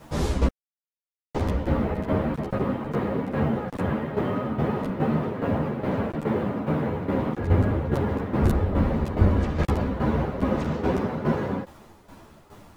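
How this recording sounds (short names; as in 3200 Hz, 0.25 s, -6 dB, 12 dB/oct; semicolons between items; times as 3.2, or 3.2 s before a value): a quantiser's noise floor 10-bit, dither none; tremolo saw down 2.4 Hz, depth 70%; a shimmering, thickened sound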